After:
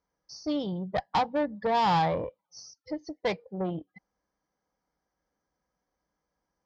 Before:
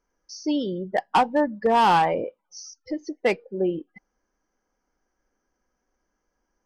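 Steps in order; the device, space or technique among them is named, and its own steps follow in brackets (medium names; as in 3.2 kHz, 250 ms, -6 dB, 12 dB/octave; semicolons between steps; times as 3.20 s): guitar amplifier (valve stage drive 20 dB, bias 0.6; tone controls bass +6 dB, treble +11 dB; cabinet simulation 87–4100 Hz, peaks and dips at 240 Hz -9 dB, 370 Hz -9 dB, 1.5 kHz -6 dB, 2.7 kHz -10 dB)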